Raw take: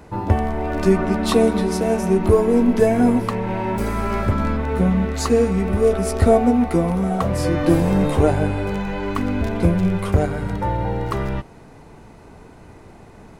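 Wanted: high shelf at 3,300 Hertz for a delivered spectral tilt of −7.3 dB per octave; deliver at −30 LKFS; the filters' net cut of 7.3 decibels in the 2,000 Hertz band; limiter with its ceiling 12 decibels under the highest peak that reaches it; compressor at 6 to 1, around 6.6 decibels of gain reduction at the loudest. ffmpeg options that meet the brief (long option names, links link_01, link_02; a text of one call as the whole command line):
ffmpeg -i in.wav -af "equalizer=frequency=2000:width_type=o:gain=-8.5,highshelf=frequency=3300:gain=-5,acompressor=threshold=-17dB:ratio=6,volume=-1.5dB,alimiter=limit=-21.5dB:level=0:latency=1" out.wav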